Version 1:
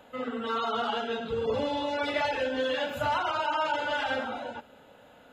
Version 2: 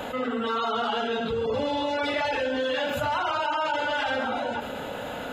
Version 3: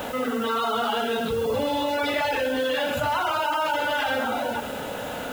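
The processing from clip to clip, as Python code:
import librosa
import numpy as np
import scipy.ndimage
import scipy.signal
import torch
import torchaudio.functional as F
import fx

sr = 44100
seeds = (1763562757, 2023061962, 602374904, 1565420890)

y1 = fx.env_flatten(x, sr, amount_pct=70)
y2 = fx.quant_dither(y1, sr, seeds[0], bits=8, dither='triangular')
y2 = y2 * librosa.db_to_amplitude(2.0)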